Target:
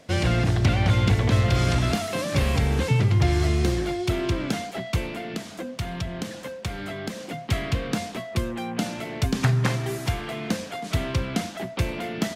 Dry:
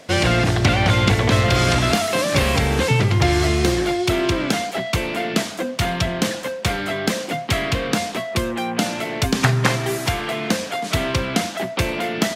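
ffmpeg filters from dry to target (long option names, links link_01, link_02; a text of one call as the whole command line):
ffmpeg -i in.wav -filter_complex "[0:a]asettb=1/sr,asplit=3[link_01][link_02][link_03];[link_01]atrim=end=5.064[link_04];[link_02]atrim=start=5.06:end=7.44,asetpts=PTS-STARTPTS,afade=type=in:duration=0.004:curve=qsin,afade=type=out:start_time=2.376:duration=0.004:curve=qsin,acompressor=threshold=-22dB:ratio=5[link_05];[link_03]atrim=start=7.436[link_06];[link_04][link_05]acrossfade=duration=0.004:curve1=hsin:curve2=qsin[link_07];[link_07][link_06]acrossfade=duration=0.004:curve1=qsin:curve2=hsin,lowshelf=frequency=210:gain=9.5,volume=2dB,asoftclip=hard,volume=-2dB,volume=-9dB" out.wav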